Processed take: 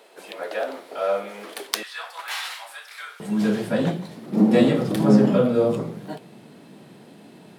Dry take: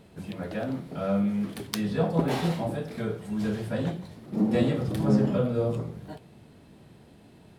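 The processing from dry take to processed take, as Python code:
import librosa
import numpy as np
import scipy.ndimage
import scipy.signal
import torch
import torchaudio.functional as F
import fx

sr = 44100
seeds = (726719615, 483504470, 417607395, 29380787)

y = fx.highpass(x, sr, hz=fx.steps((0.0, 440.0), (1.83, 1200.0), (3.2, 160.0)), slope=24)
y = y * librosa.db_to_amplitude(8.0)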